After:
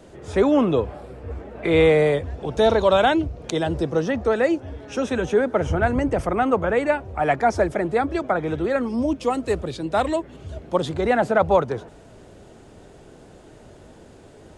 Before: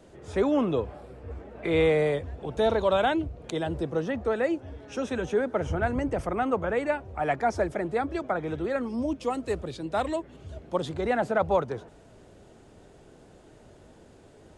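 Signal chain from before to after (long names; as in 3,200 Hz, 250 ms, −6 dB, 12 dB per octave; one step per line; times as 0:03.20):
0:02.30–0:04.60: parametric band 5,500 Hz +6 dB 0.63 octaves
level +6.5 dB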